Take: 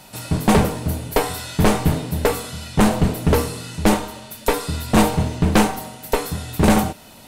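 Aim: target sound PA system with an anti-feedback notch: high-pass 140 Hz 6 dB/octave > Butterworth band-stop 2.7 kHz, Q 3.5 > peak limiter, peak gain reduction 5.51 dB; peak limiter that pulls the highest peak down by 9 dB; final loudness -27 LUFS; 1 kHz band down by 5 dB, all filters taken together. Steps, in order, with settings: peaking EQ 1 kHz -6.5 dB; peak limiter -16 dBFS; high-pass 140 Hz 6 dB/octave; Butterworth band-stop 2.7 kHz, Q 3.5; trim +2.5 dB; peak limiter -16.5 dBFS

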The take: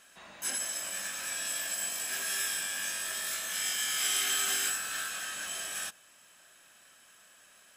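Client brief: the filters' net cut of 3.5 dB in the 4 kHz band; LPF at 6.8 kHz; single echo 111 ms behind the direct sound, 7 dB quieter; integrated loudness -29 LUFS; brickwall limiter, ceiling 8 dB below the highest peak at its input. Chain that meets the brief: low-pass 6.8 kHz; peaking EQ 4 kHz -4.5 dB; peak limiter -28 dBFS; delay 111 ms -7 dB; trim +7 dB

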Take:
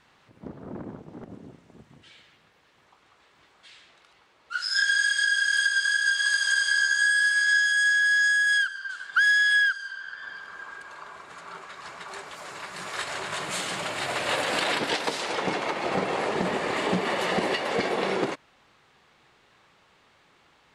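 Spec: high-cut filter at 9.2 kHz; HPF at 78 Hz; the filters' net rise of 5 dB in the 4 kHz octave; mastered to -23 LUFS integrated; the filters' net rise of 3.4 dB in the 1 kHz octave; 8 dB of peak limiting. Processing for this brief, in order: high-pass 78 Hz; low-pass 9.2 kHz; peaking EQ 1 kHz +4 dB; peaking EQ 4 kHz +6.5 dB; trim +2 dB; peak limiter -15.5 dBFS

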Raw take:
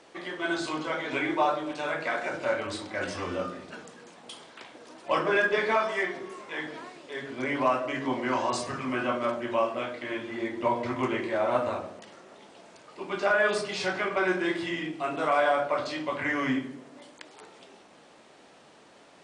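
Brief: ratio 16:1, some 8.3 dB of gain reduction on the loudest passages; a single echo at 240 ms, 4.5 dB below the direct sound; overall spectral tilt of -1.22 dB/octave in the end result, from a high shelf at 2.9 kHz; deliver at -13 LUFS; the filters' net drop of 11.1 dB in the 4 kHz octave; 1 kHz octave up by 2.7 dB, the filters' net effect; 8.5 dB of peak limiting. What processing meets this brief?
peaking EQ 1 kHz +5 dB; treble shelf 2.9 kHz -9 dB; peaking EQ 4 kHz -8.5 dB; compression 16:1, threshold -26 dBFS; peak limiter -25.5 dBFS; delay 240 ms -4.5 dB; trim +21 dB

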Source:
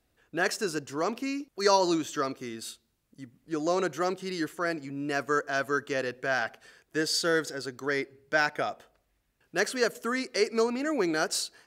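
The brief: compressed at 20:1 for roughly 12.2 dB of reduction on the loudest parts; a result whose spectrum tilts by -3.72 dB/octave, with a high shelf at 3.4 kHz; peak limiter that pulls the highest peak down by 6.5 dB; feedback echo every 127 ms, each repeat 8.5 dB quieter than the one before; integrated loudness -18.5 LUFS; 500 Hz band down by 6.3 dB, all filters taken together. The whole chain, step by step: peaking EQ 500 Hz -8 dB; treble shelf 3.4 kHz -5.5 dB; compression 20:1, threshold -34 dBFS; peak limiter -29.5 dBFS; feedback delay 127 ms, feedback 38%, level -8.5 dB; trim +21.5 dB

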